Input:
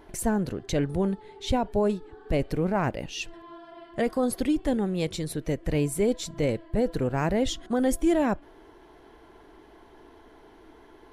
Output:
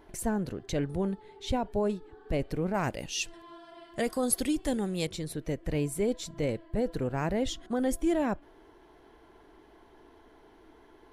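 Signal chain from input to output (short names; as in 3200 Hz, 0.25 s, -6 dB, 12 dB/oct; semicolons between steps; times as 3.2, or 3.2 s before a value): 2.74–5.07 bell 9500 Hz +12.5 dB 2.3 oct; gain -4.5 dB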